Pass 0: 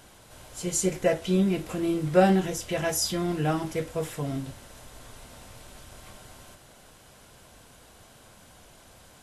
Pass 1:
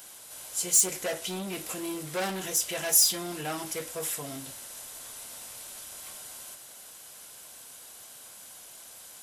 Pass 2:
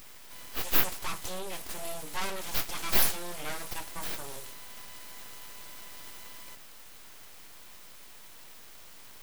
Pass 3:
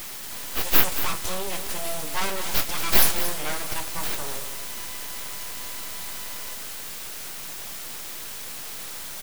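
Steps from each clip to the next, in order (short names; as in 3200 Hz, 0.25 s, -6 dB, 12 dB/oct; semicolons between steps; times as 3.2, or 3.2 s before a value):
soft clip -23.5 dBFS, distortion -8 dB; RIAA curve recording; gain -1.5 dB
full-wave rectifier
in parallel at -3.5 dB: requantised 6-bit, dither triangular; on the sum: echo 0.227 s -10.5 dB; gain +2 dB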